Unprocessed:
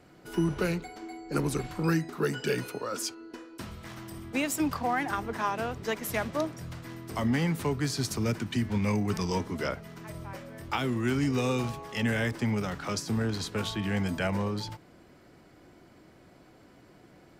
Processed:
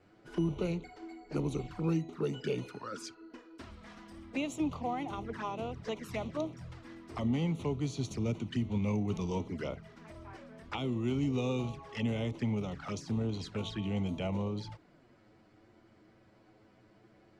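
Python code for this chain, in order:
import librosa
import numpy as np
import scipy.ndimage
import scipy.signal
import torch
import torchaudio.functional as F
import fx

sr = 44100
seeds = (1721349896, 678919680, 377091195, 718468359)

y = fx.env_flanger(x, sr, rest_ms=11.6, full_db=-28.0)
y = fx.air_absorb(y, sr, metres=79.0)
y = F.gain(torch.from_numpy(y), -3.5).numpy()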